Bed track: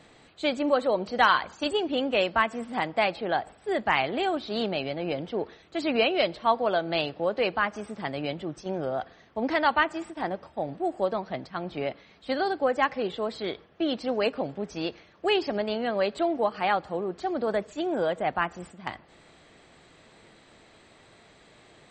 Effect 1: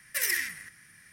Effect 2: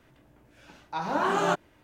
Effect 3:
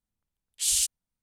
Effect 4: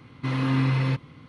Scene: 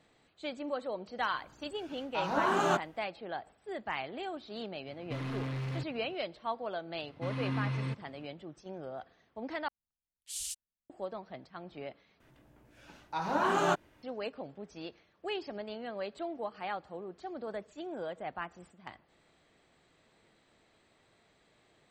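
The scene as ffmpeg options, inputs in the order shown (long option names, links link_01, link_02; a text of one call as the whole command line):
ffmpeg -i bed.wav -i cue0.wav -i cue1.wav -i cue2.wav -i cue3.wav -filter_complex "[2:a]asplit=2[link_01][link_02];[4:a]asplit=2[link_03][link_04];[0:a]volume=-12.5dB[link_05];[link_03]asoftclip=type=hard:threshold=-24.5dB[link_06];[link_05]asplit=3[link_07][link_08][link_09];[link_07]atrim=end=9.684[link_10];[3:a]atrim=end=1.22,asetpts=PTS-STARTPTS,volume=-14.5dB[link_11];[link_08]atrim=start=10.896:end=12.204[link_12];[link_02]atrim=end=1.83,asetpts=PTS-STARTPTS,volume=-3dB[link_13];[link_09]atrim=start=14.026[link_14];[link_01]atrim=end=1.83,asetpts=PTS-STARTPTS,volume=-3dB,afade=type=in:duration=0.004:curve=hsin,afade=type=out:start_time=1.826:duration=0.004:curve=hsin,adelay=1220[link_15];[link_06]atrim=end=1.28,asetpts=PTS-STARTPTS,volume=-9.5dB,afade=type=in:duration=0.004:curve=hsin,afade=type=out:start_time=1.276:duration=0.004:curve=hsin,adelay=4870[link_16];[link_04]atrim=end=1.28,asetpts=PTS-STARTPTS,volume=-11dB,afade=type=in:duration=0.004:curve=hsin,afade=type=out:start_time=1.276:duration=0.004:curve=hsin,adelay=307818S[link_17];[link_10][link_11]acrossfade=duration=0.004:curve1=hsin:curve2=hsin[link_18];[link_18][link_12]acrossfade=duration=0.004:curve1=hsin:curve2=hsin[link_19];[link_19][link_13]acrossfade=duration=0.004:curve1=hsin:curve2=hsin[link_20];[link_20][link_14]acrossfade=duration=0.004:curve1=hsin:curve2=hsin[link_21];[link_21][link_15][link_16][link_17]amix=inputs=4:normalize=0" out.wav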